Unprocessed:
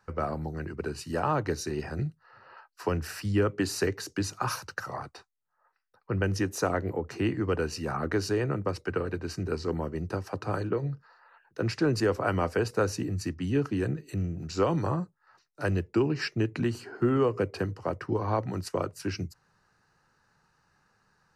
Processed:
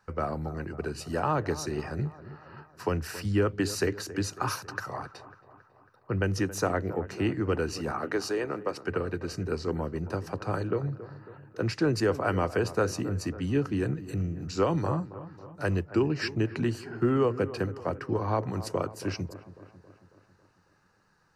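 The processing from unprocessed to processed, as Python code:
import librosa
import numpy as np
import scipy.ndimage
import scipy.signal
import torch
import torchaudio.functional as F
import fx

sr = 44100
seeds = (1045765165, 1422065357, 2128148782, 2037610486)

y = fx.highpass(x, sr, hz=300.0, slope=12, at=(7.91, 8.83))
y = fx.echo_wet_lowpass(y, sr, ms=274, feedback_pct=56, hz=1800.0, wet_db=-15)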